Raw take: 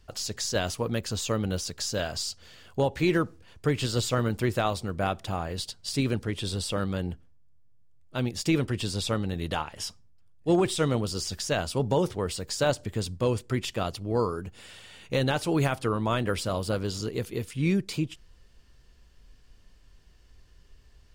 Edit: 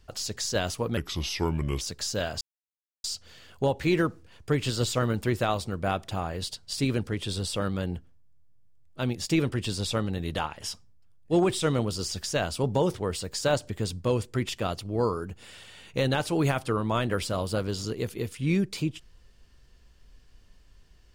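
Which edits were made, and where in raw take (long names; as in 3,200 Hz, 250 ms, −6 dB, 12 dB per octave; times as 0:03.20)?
0:00.97–0:01.60: play speed 75%
0:02.20: splice in silence 0.63 s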